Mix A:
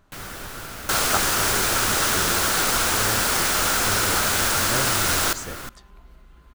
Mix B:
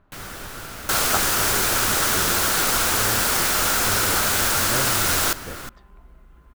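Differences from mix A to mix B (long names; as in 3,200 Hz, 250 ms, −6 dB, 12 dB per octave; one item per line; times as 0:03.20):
speech: add Bessel low-pass filter 2,000 Hz, order 2
second sound: add parametric band 16,000 Hz +5.5 dB 0.55 octaves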